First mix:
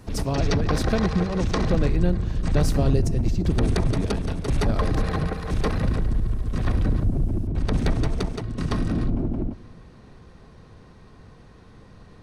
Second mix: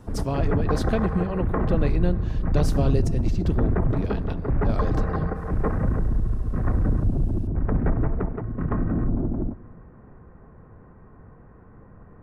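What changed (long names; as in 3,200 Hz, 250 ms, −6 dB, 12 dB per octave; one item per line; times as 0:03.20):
speech: add bass and treble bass −2 dB, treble −5 dB
background: add inverse Chebyshev low-pass filter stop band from 4,200 Hz, stop band 50 dB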